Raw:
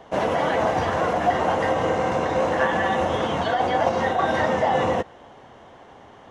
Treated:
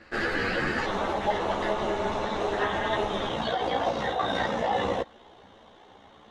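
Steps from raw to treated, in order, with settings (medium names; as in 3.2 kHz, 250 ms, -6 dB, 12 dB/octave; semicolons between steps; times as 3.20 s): peaking EQ 3.7 kHz +11 dB 0.37 oct; ring modulator 1 kHz, from 0.85 s 110 Hz, from 3.29 s 29 Hz; three-phase chorus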